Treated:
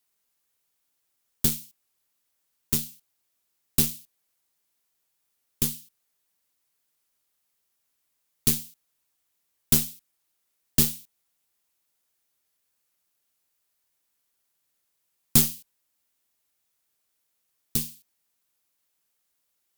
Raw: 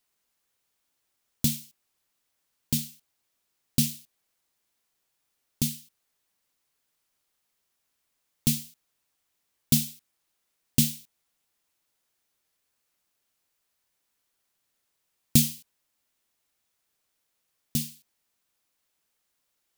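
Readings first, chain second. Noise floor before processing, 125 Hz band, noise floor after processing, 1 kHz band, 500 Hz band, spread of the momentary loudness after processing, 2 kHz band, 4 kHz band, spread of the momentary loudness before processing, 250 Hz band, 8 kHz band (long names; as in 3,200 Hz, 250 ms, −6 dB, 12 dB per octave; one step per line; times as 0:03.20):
−78 dBFS, −2.5 dB, −76 dBFS, can't be measured, +8.0 dB, 17 LU, +3.0 dB, +0.5 dB, 17 LU, −3.0 dB, +2.5 dB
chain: harmonic generator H 8 −15 dB, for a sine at −3.5 dBFS
high-shelf EQ 8,500 Hz +7 dB
level −2.5 dB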